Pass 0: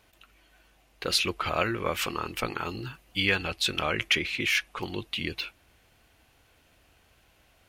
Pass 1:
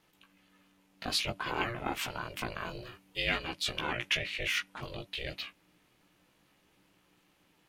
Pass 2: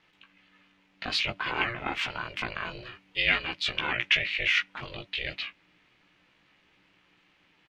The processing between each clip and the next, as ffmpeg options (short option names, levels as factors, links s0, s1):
-af "flanger=delay=15.5:depth=3.7:speed=0.54,aeval=exprs='val(0)*sin(2*PI*240*n/s)':c=same"
-af "firequalizer=gain_entry='entry(560,0);entry(2100,9);entry(11000,-19)':delay=0.05:min_phase=1"